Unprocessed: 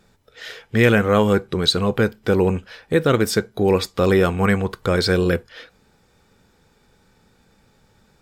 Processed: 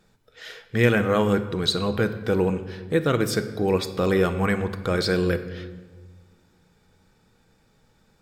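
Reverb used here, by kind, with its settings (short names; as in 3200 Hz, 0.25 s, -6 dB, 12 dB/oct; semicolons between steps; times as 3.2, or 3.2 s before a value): shoebox room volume 1200 m³, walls mixed, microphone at 0.58 m; gain -5 dB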